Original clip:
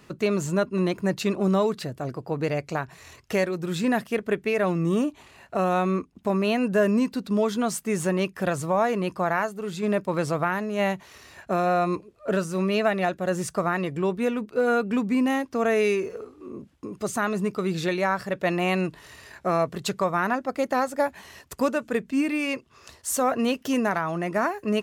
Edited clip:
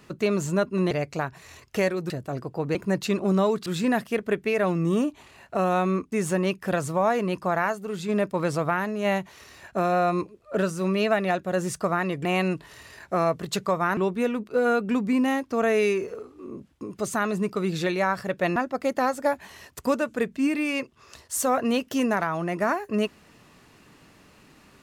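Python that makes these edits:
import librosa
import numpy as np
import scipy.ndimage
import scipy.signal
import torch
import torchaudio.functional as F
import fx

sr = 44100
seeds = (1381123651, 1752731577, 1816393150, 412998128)

y = fx.edit(x, sr, fx.swap(start_s=0.91, length_s=0.91, other_s=2.47, other_length_s=1.19),
    fx.cut(start_s=6.12, length_s=1.74),
    fx.move(start_s=18.58, length_s=1.72, to_s=13.99), tone=tone)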